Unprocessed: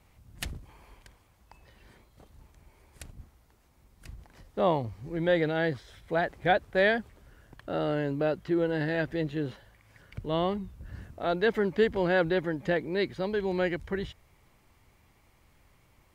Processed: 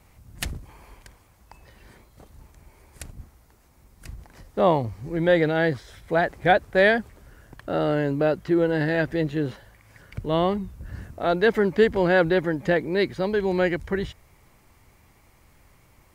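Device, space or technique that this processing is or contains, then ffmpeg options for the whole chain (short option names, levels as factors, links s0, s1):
exciter from parts: -filter_complex "[0:a]asplit=2[s0][s1];[s1]highpass=f=3000:w=0.5412,highpass=f=3000:w=1.3066,asoftclip=type=tanh:threshold=0.0188,volume=0.355[s2];[s0][s2]amix=inputs=2:normalize=0,volume=2"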